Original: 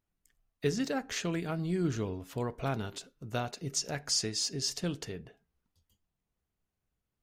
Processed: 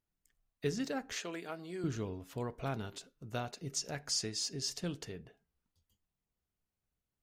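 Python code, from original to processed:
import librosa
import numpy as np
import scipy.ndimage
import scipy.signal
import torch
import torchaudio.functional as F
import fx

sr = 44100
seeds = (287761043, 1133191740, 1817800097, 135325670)

y = fx.highpass(x, sr, hz=370.0, slope=12, at=(1.16, 1.84))
y = y * 10.0 ** (-4.5 / 20.0)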